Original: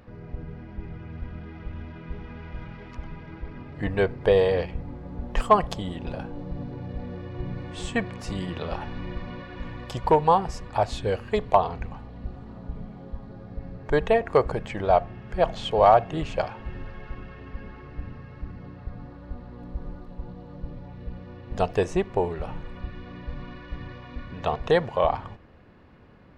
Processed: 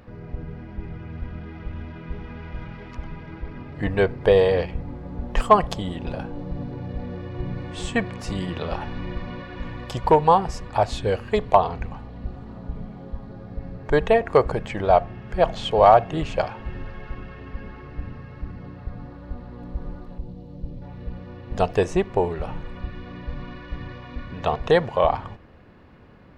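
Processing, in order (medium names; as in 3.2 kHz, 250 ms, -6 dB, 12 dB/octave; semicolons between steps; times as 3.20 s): 20.18–20.82 s: peaking EQ 1.4 kHz -14 dB 1.7 oct; trim +3 dB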